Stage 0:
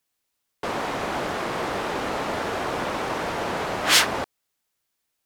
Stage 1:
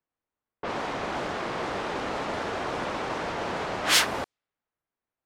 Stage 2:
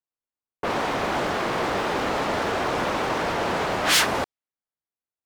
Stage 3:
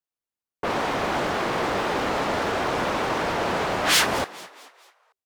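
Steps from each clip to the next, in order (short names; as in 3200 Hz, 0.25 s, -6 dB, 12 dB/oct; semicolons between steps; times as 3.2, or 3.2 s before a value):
low-pass opened by the level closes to 1400 Hz, open at -20.5 dBFS; gain -3.5 dB
sample leveller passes 3; gain -5 dB
frequency-shifting echo 0.22 s, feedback 45%, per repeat +96 Hz, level -18 dB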